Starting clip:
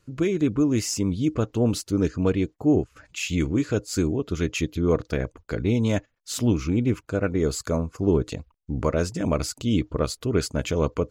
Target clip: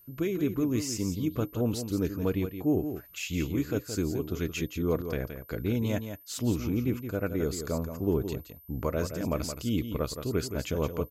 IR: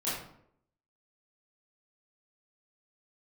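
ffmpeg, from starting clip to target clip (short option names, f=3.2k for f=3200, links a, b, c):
-af "aeval=exprs='val(0)+0.00398*sin(2*PI*13000*n/s)':c=same,aecho=1:1:171:0.355,volume=-6.5dB"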